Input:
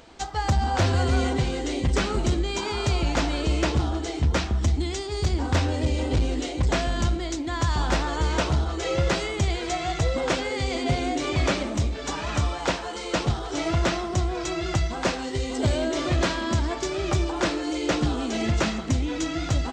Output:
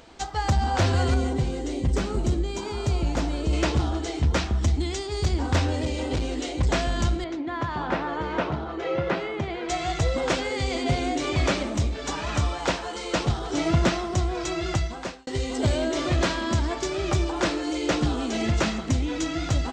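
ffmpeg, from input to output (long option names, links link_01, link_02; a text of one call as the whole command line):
ffmpeg -i in.wav -filter_complex "[0:a]asettb=1/sr,asplit=3[link_01][link_02][link_03];[link_01]atrim=end=1.144[link_04];[link_02]atrim=start=1.14:end=3.53,asetpts=PTS-STARTPTS,afade=type=in:duration=0.004:curve=qsin,afade=type=out:start_time=2.386:duration=0.004:curve=qsin,equalizer=frequency=2500:width=0.33:gain=-8[link_05];[link_03]atrim=start=3.526[link_06];[link_04][link_05]acrossfade=duration=0.004:curve1=hsin:curve2=qsin[link_07];[link_07][link_06]acrossfade=duration=0.004:curve1=qsin:curve2=hsin,asettb=1/sr,asplit=3[link_08][link_09][link_10];[link_08]atrim=end=5.814[link_11];[link_09]atrim=start=5.81:end=6.48,asetpts=PTS-STARTPTS,afade=type=in:duration=0.004:curve=qsin,afade=type=out:start_time=0.666:duration=0.004:curve=qsin,equalizer=frequency=69:width_type=o:width=2.7:gain=-6[link_12];[link_10]atrim=start=6.476[link_13];[link_11][link_12]acrossfade=duration=0.004:curve1=hsin:curve2=qsin[link_14];[link_14][link_13]acrossfade=duration=0.004:curve1=qsin:curve2=hsin,asettb=1/sr,asplit=3[link_15][link_16][link_17];[link_15]atrim=end=7.244[link_18];[link_16]atrim=start=7.24:end=9.69,asetpts=PTS-STARTPTS,afade=type=in:duration=0.004:curve=qsin,afade=type=out:start_time=2.446:duration=0.004:curve=qsin,highpass=150,lowpass=2200[link_19];[link_17]atrim=start=9.686[link_20];[link_18][link_19]acrossfade=duration=0.004:curve1=hsin:curve2=qsin[link_21];[link_21][link_20]acrossfade=duration=0.004:curve1=qsin:curve2=hsin,asettb=1/sr,asplit=3[link_22][link_23][link_24];[link_22]atrim=end=13.414[link_25];[link_23]atrim=start=13.41:end=13.89,asetpts=PTS-STARTPTS,afade=type=in:duration=0.004:curve=qsin,afade=type=out:start_time=0.476:duration=0.004:curve=qsin,equalizer=frequency=190:width=1.2:gain=8[link_26];[link_24]atrim=start=13.886[link_27];[link_25][link_26]acrossfade=duration=0.004:curve1=hsin:curve2=qsin[link_28];[link_28][link_27]acrossfade=duration=0.004:curve1=qsin:curve2=hsin,asplit=2[link_29][link_30];[link_29]atrim=end=15.27,asetpts=PTS-STARTPTS,afade=type=out:start_time=14.71:duration=0.56[link_31];[link_30]atrim=start=15.27,asetpts=PTS-STARTPTS,afade=type=in:duration=0.004:curve=hsin[link_32];[link_31][link_32]concat=n=2:v=0:a=1" out.wav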